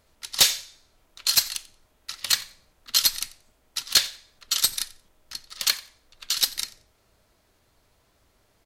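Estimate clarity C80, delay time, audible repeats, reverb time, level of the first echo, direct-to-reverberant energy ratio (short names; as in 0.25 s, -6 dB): none, 90 ms, 1, none, -21.5 dB, none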